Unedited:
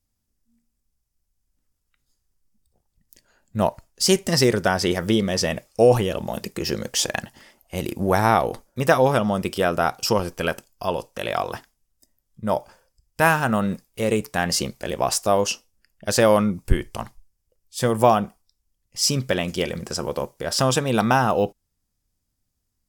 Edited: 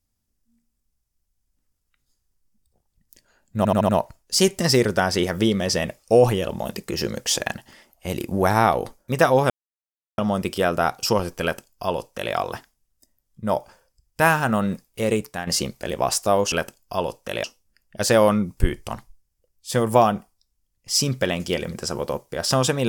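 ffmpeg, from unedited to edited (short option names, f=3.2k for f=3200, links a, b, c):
-filter_complex "[0:a]asplit=9[a][b][c][d][e][f][g][h][i];[a]atrim=end=3.652[j];[b]atrim=start=3.568:end=3.652[k];[c]atrim=start=3.568:end=3.652[l];[d]atrim=start=3.568:end=3.652[m];[e]atrim=start=3.568:end=9.18,asetpts=PTS-STARTPTS,afade=t=out:st=5.608:d=0.004:c=hsin,apad=pad_dur=0.68[n];[f]atrim=start=9.18:end=14.47,asetpts=PTS-STARTPTS,afade=t=in:d=0.004:c=hsin,afade=t=out:st=4.95:d=0.34:silence=0.281838[o];[g]atrim=start=14.47:end=15.522,asetpts=PTS-STARTPTS,afade=t=in:d=0.004:c=hsin:silence=0.281838[p];[h]atrim=start=10.418:end=11.342[q];[i]atrim=start=15.518[r];[j][k]acrossfade=d=0.004:c1=hsin:c2=hsin[s];[s][l]acrossfade=d=0.004:c1=hsin:c2=hsin[t];[t][m]acrossfade=d=0.004:c1=hsin:c2=hsin[u];[n][o][p]concat=n=3:v=0:a=1[v];[u][v]acrossfade=d=0.004:c1=hsin:c2=hsin[w];[w][q]acrossfade=d=0.004:c1=hsin:c2=hsin[x];[x][r]acrossfade=d=0.004:c1=hsin:c2=hsin"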